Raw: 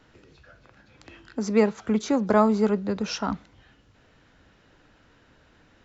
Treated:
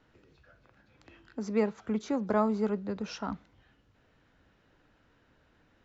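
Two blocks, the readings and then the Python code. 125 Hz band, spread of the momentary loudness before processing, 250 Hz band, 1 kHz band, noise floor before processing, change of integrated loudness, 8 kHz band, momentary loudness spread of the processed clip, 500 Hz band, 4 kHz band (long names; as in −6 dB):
−7.5 dB, 12 LU, −7.5 dB, −8.0 dB, −60 dBFS, −7.5 dB, can't be measured, 12 LU, −7.5 dB, −11.0 dB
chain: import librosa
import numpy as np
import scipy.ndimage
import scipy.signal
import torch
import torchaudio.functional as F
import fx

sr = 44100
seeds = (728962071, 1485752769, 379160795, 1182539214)

y = fx.high_shelf(x, sr, hz=4300.0, db=-6.5)
y = F.gain(torch.from_numpy(y), -7.5).numpy()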